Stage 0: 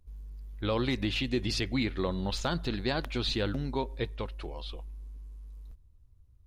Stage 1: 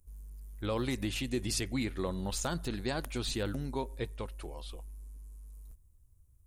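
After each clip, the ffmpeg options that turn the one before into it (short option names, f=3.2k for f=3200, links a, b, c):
-af "highshelf=f=6k:t=q:w=1.5:g=13.5,volume=-3.5dB"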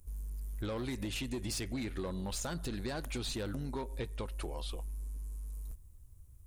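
-af "asoftclip=type=tanh:threshold=-29.5dB,acompressor=threshold=-43dB:ratio=6,volume=7.5dB"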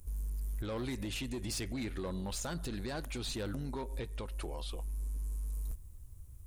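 -af "alimiter=level_in=12.5dB:limit=-24dB:level=0:latency=1:release=354,volume=-12.5dB,volume=5dB"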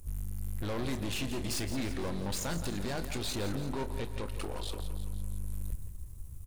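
-filter_complex "[0:a]aeval=exprs='(tanh(100*val(0)+0.55)-tanh(0.55))/100':c=same,asplit=2[a][b];[b]adelay=30,volume=-12.5dB[c];[a][c]amix=inputs=2:normalize=0,aecho=1:1:169|338|507|676|845|1014:0.282|0.155|0.0853|0.0469|0.0258|0.0142,volume=8dB"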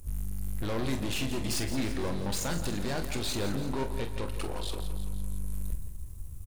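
-filter_complex "[0:a]asplit=2[a][b];[b]adelay=45,volume=-10dB[c];[a][c]amix=inputs=2:normalize=0,volume=2.5dB"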